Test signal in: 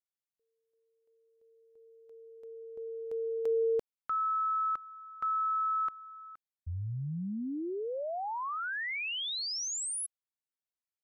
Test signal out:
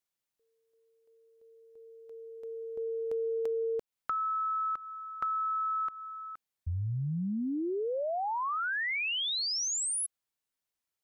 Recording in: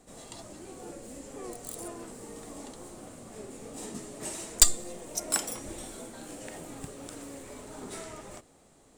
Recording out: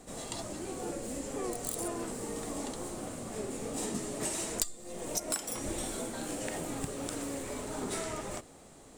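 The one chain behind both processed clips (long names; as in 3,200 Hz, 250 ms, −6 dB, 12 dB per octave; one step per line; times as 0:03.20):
downward compressor 12 to 1, threshold −36 dBFS
level +6 dB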